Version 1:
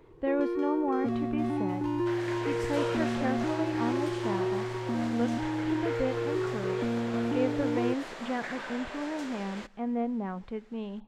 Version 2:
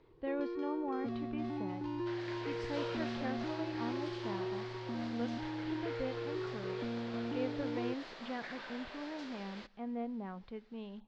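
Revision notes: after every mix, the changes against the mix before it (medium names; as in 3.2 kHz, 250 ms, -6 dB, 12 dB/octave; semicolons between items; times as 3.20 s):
master: add four-pole ladder low-pass 5.4 kHz, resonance 45%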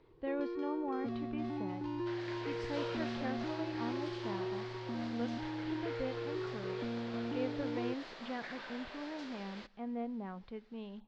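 no change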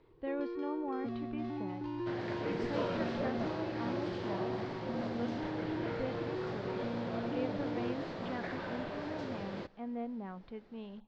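second sound: remove band-pass filter 3.5 kHz, Q 0.54; master: add distance through air 57 m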